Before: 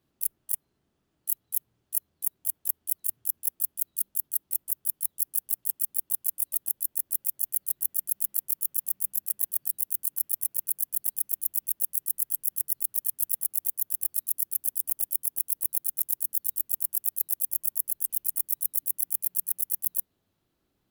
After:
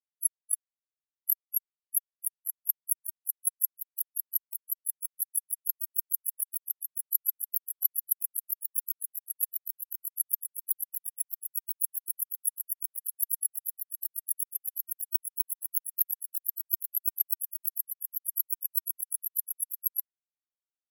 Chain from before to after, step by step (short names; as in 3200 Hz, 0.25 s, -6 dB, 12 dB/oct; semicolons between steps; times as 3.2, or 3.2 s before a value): spectral expander 4:1